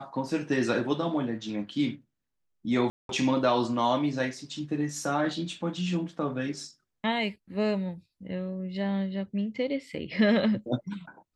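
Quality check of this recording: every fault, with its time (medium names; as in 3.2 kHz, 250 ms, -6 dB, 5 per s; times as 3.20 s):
2.90–3.09 s: dropout 192 ms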